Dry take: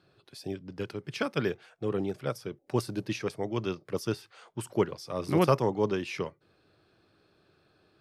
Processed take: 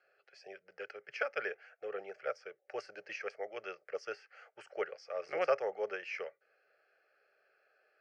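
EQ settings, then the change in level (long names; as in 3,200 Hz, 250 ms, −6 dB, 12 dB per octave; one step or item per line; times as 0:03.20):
loudspeaker in its box 310–6,400 Hz, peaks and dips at 350 Hz −6 dB, 690 Hz −3 dB, 1,000 Hz −5 dB
three-way crossover with the lows and the highs turned down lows −21 dB, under 430 Hz, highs −19 dB, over 5,000 Hz
phaser with its sweep stopped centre 1,000 Hz, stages 6
+1.5 dB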